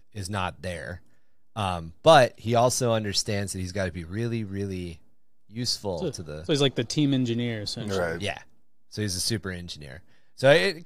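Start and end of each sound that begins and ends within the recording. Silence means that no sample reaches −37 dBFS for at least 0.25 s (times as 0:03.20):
0:01.56–0:04.94
0:05.56–0:08.42
0:08.93–0:09.97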